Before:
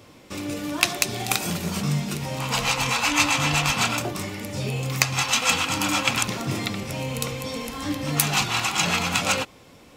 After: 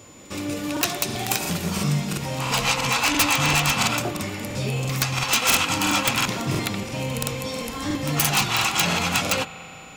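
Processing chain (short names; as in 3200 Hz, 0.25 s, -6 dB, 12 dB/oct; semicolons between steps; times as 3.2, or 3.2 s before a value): pre-echo 0.123 s -20 dB; wrapped overs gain 11 dB; on a send at -16 dB: reverb RT60 4.8 s, pre-delay 47 ms; on the sum: whine 7000 Hz -51 dBFS; crackling interface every 0.34 s, samples 2048, repeat, from 0.72; gain +1.5 dB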